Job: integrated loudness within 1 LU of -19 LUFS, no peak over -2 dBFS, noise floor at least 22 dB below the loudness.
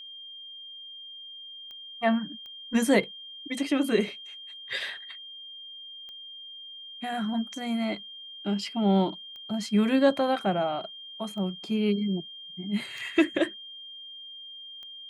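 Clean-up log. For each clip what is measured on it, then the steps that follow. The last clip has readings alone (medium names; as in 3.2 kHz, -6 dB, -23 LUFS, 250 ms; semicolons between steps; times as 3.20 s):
clicks found 7; steady tone 3.2 kHz; tone level -41 dBFS; loudness -28.0 LUFS; peak level -8.5 dBFS; loudness target -19.0 LUFS
-> de-click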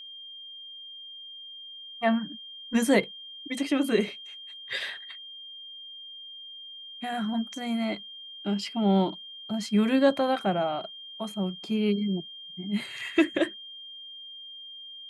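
clicks found 0; steady tone 3.2 kHz; tone level -41 dBFS
-> band-stop 3.2 kHz, Q 30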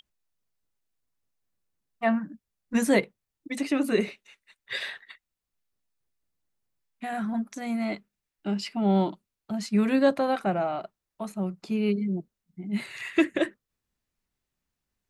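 steady tone not found; loudness -28.0 LUFS; peak level -8.5 dBFS; loudness target -19.0 LUFS
-> trim +9 dB; peak limiter -2 dBFS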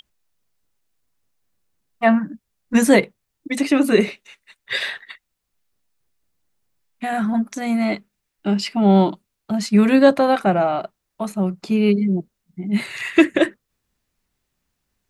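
loudness -19.0 LUFS; peak level -2.0 dBFS; noise floor -78 dBFS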